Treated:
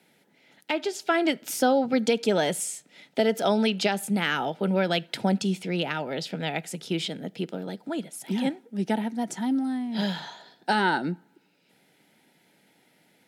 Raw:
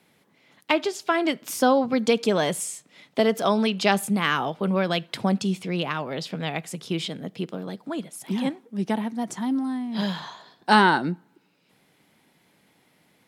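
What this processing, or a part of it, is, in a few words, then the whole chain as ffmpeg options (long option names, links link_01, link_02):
PA system with an anti-feedback notch: -af "highpass=150,asuperstop=centerf=1100:order=4:qfactor=4.2,alimiter=limit=-11.5dB:level=0:latency=1:release=292"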